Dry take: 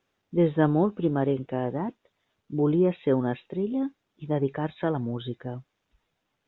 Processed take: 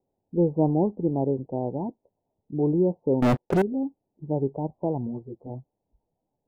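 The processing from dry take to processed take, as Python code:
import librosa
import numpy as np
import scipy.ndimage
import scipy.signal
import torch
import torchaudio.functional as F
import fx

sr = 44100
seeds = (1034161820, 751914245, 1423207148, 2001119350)

y = scipy.signal.sosfilt(scipy.signal.butter(12, 910.0, 'lowpass', fs=sr, output='sos'), x)
y = fx.leveller(y, sr, passes=5, at=(3.22, 3.62))
y = fx.ensemble(y, sr, at=(5.06, 5.49), fade=0.02)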